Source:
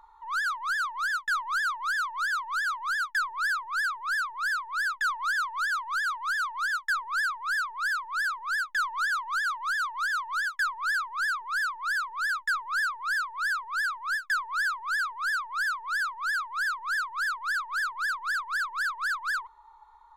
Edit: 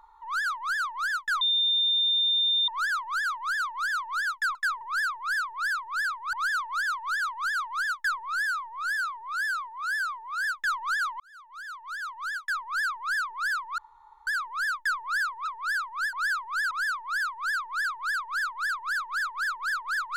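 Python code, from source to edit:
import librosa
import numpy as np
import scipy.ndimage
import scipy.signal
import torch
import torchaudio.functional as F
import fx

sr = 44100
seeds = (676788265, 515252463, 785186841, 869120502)

y = fx.edit(x, sr, fx.insert_tone(at_s=1.41, length_s=1.27, hz=3610.0, db=-21.0),
    fx.cut(start_s=4.8, length_s=0.37),
    fx.stretch_span(start_s=7.09, length_s=1.46, factor=1.5),
    fx.fade_in_span(start_s=9.31, length_s=1.71),
    fx.insert_room_tone(at_s=11.89, length_s=0.49),
    fx.cut(start_s=13.08, length_s=0.47),
    fx.move(start_s=14.22, length_s=0.26, to_s=3.28),
    fx.cut(start_s=15.06, length_s=0.78), tone=tone)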